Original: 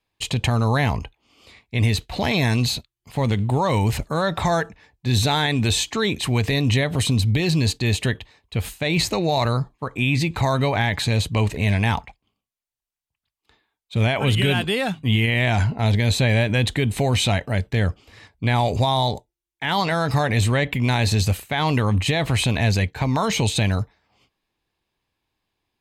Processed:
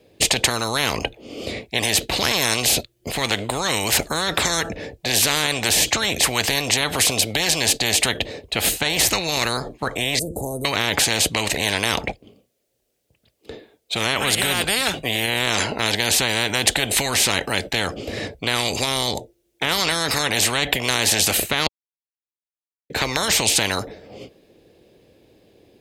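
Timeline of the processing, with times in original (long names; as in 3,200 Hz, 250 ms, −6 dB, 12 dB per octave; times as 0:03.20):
0:10.19–0:10.65: elliptic band-stop filter 470–9,500 Hz, stop band 70 dB
0:21.67–0:22.90: silence
whole clip: high-pass filter 170 Hz 6 dB per octave; low shelf with overshoot 720 Hz +11 dB, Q 3; every bin compressed towards the loudest bin 10 to 1; level −3 dB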